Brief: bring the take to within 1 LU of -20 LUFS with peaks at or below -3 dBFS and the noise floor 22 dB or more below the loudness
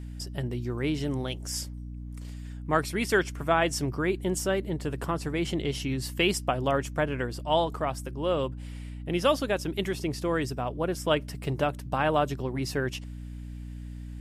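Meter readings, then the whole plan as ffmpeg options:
hum 60 Hz; highest harmonic 300 Hz; hum level -36 dBFS; loudness -29.0 LUFS; peak level -10.0 dBFS; loudness target -20.0 LUFS
-> -af "bandreject=f=60:t=h:w=6,bandreject=f=120:t=h:w=6,bandreject=f=180:t=h:w=6,bandreject=f=240:t=h:w=6,bandreject=f=300:t=h:w=6"
-af "volume=2.82,alimiter=limit=0.708:level=0:latency=1"

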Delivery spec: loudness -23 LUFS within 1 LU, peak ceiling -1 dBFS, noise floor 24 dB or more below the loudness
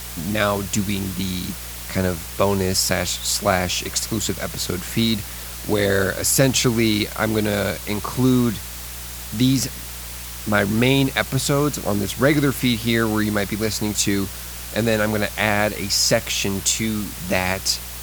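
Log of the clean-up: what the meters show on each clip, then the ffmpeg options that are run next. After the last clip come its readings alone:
hum 60 Hz; highest harmonic 180 Hz; hum level -36 dBFS; noise floor -33 dBFS; noise floor target -45 dBFS; loudness -20.5 LUFS; peak level -2.0 dBFS; loudness target -23.0 LUFS
-> -af "bandreject=f=60:t=h:w=4,bandreject=f=120:t=h:w=4,bandreject=f=180:t=h:w=4"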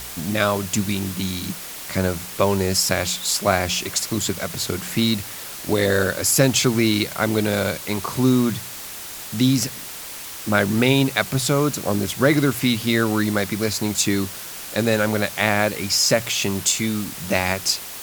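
hum not found; noise floor -35 dBFS; noise floor target -45 dBFS
-> -af "afftdn=nr=10:nf=-35"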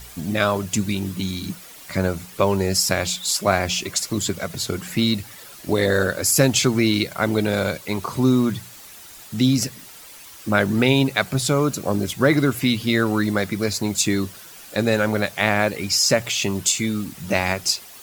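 noise floor -42 dBFS; noise floor target -45 dBFS
-> -af "afftdn=nr=6:nf=-42"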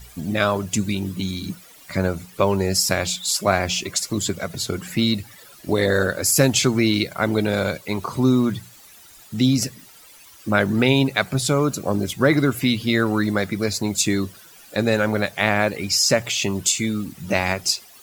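noise floor -47 dBFS; loudness -21.0 LUFS; peak level -2.5 dBFS; loudness target -23.0 LUFS
-> -af "volume=0.794"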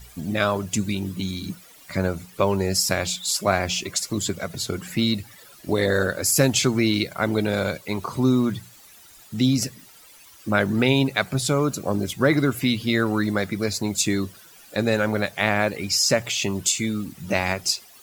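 loudness -23.0 LUFS; peak level -4.5 dBFS; noise floor -49 dBFS

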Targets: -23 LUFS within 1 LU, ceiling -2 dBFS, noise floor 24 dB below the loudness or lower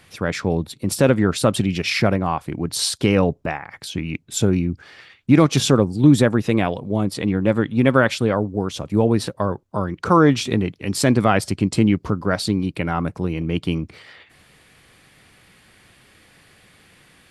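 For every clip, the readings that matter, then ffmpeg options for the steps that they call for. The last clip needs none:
loudness -20.0 LUFS; peak level -2.0 dBFS; loudness target -23.0 LUFS
-> -af "volume=0.708"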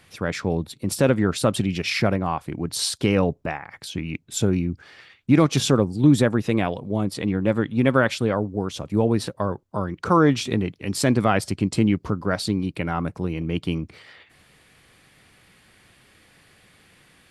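loudness -23.0 LUFS; peak level -5.0 dBFS; noise floor -57 dBFS

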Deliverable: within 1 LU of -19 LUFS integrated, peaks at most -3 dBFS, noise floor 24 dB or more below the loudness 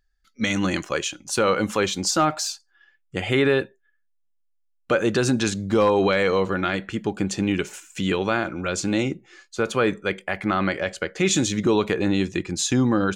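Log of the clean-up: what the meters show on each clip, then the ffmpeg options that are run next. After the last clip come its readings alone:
loudness -23.0 LUFS; peak level -10.0 dBFS; loudness target -19.0 LUFS
-> -af "volume=1.58"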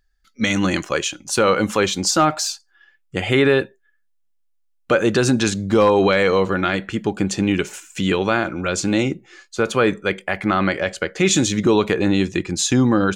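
loudness -19.0 LUFS; peak level -6.0 dBFS; noise floor -64 dBFS

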